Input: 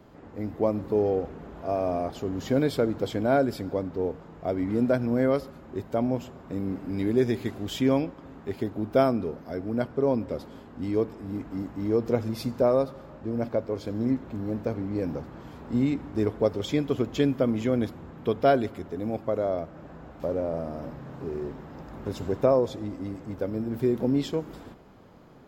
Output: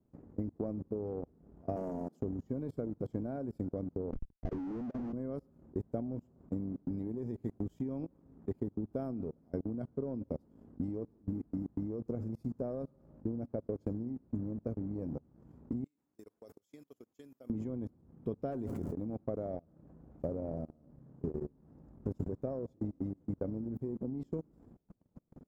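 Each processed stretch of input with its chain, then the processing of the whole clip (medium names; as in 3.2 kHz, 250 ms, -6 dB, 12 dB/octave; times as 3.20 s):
1.76–2.20 s: steep high-pass 170 Hz + tone controls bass +4 dB, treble +11 dB + loudspeaker Doppler distortion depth 0.37 ms
4.12–5.13 s: Chebyshev high-pass 270 Hz, order 3 + Schmitt trigger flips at -40.5 dBFS + distance through air 220 m
15.84–17.50 s: differentiator + decay stretcher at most 72 dB/s
18.51–18.92 s: hard clipper -19.5 dBFS + crackle 500 per s -42 dBFS + decay stretcher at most 23 dB/s
whole clip: FFT filter 230 Hz 0 dB, 3.7 kHz -25 dB, 6.8 kHz -14 dB; level held to a coarse grid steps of 18 dB; transient shaper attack +7 dB, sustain -9 dB; trim -2.5 dB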